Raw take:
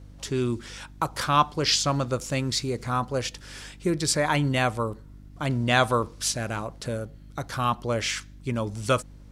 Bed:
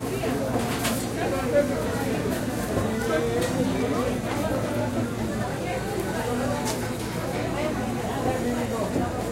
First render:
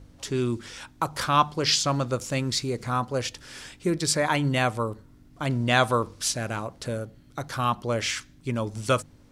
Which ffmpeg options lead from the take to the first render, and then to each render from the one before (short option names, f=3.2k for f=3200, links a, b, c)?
-af "bandreject=f=50:t=h:w=4,bandreject=f=100:t=h:w=4,bandreject=f=150:t=h:w=4,bandreject=f=200:t=h:w=4"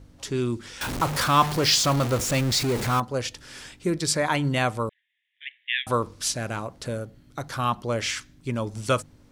-filter_complex "[0:a]asettb=1/sr,asplit=3[a][b][c];[a]atrim=end=0.814[d];[b]atrim=start=0.81:end=3,asetpts=PTS-STARTPTS,afade=t=in:d=0.004:c=qsin,afade=t=out:st=2.186:d=0.004:c=qsin,aeval=exprs='val(0)+0.5*0.0596*sgn(val(0))':c=same[e];[c]atrim=start=2.996[f];[d][e]acrossfade=d=0.004:c1=hsin:c2=qsin[g];[g][f]acrossfade=d=0.004:c1=qsin:c2=hsin,asettb=1/sr,asplit=3[h][i][j];[h]atrim=end=4.894[k];[i]atrim=start=4.89:end=5.87,asetpts=PTS-STARTPTS,afade=t=in:d=0.004:c=qsin,afade=t=out:st=0.976:d=0.004:c=qsin,asuperpass=centerf=2500:order=20:qfactor=1.3[l];[j]atrim=start=5.866[m];[k][l]acrossfade=d=0.004:c1=hsin:c2=qsin[n];[n][m]acrossfade=d=0.004:c1=qsin:c2=hsin"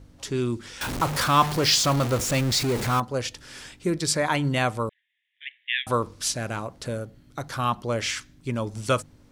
-af anull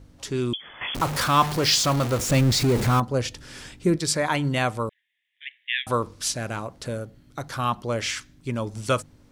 -filter_complex "[0:a]asettb=1/sr,asplit=3[a][b][c];[a]atrim=end=0.534[d];[b]atrim=start=0.53:end=0.95,asetpts=PTS-STARTPTS,afade=t=in:d=0.004:c=qsin,afade=t=out:st=0.416:d=0.004:c=qsin,lowpass=f=3k:t=q:w=0.5098,lowpass=f=3k:t=q:w=0.6013,lowpass=f=3k:t=q:w=0.9,lowpass=f=3k:t=q:w=2.563,afreqshift=-3500[e];[c]atrim=start=0.946[f];[d][e]acrossfade=d=0.004:c1=hsin:c2=qsin[g];[g][f]acrossfade=d=0.004:c1=qsin:c2=hsin,asettb=1/sr,asplit=3[h][i][j];[h]atrim=end=2.294[k];[i]atrim=start=2.29:end=3.96,asetpts=PTS-STARTPTS,afade=t=in:d=0.004:c=qsin,afade=t=out:st=1.666:d=0.004:c=qsin,lowshelf=f=410:g=6.5[l];[j]atrim=start=3.956[m];[k][l]acrossfade=d=0.004:c1=hsin:c2=qsin[n];[n][m]acrossfade=d=0.004:c1=qsin:c2=hsin"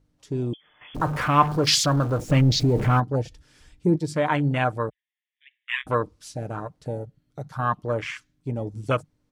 -af "afwtdn=0.0398,aecho=1:1:6.6:0.36"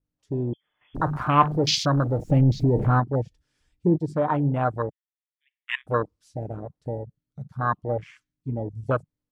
-af "adynamicequalizer=threshold=0.00794:dfrequency=5300:dqfactor=1.3:tfrequency=5300:tqfactor=1.3:attack=5:release=100:ratio=0.375:range=2.5:mode=cutabove:tftype=bell,afwtdn=0.0562"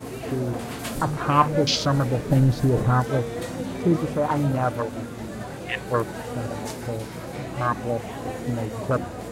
-filter_complex "[1:a]volume=-6dB[a];[0:a][a]amix=inputs=2:normalize=0"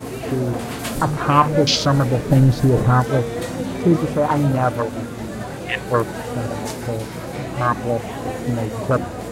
-af "volume=5dB,alimiter=limit=-2dB:level=0:latency=1"